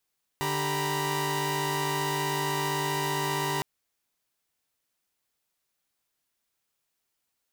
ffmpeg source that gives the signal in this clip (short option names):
-f lavfi -i "aevalsrc='0.0316*((2*mod(146.83*t,1)-1)+(2*mod(392*t,1)-1)+(2*mod(932.33*t,1)-1)+(2*mod(987.77*t,1)-1))':d=3.21:s=44100"